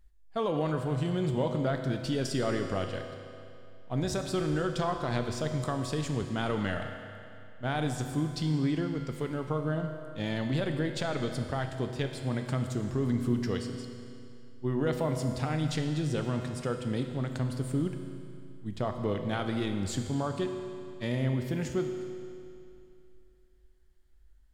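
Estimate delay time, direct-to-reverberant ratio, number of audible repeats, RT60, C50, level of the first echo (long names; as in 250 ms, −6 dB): no echo audible, 4.5 dB, no echo audible, 2.6 s, 6.0 dB, no echo audible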